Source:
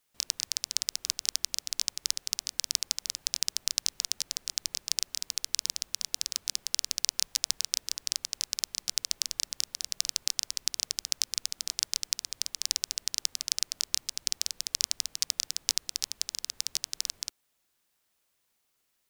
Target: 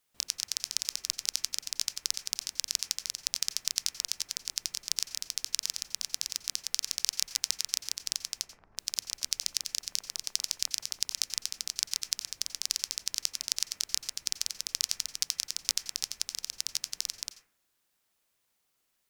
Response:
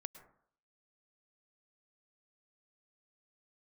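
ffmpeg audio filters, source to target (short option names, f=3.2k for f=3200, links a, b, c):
-filter_complex "[0:a]asettb=1/sr,asplit=3[a][b][c];[a]atrim=end=8.424[d];[b]atrim=start=8.42:end=11.17,asetpts=PTS-STARTPTS,afade=t=in:d=0.004:c=qsin,afade=t=out:st=2.746:d=0.004:c=qsin,acrossover=split=1200[e][f];[f]adelay=350[g];[e][g]amix=inputs=2:normalize=0,atrim=end_sample=121275[h];[c]atrim=start=11.166[i];[d][h]acrossfade=d=0.004:c1=hsin:c2=qsin[j];[j][i]acrossfade=d=0.004:c1=qsin:c2=hsin[k];[1:a]atrim=start_sample=2205,asetrate=52920,aresample=44100[l];[k][l]afir=irnorm=-1:irlink=0,volume=5dB"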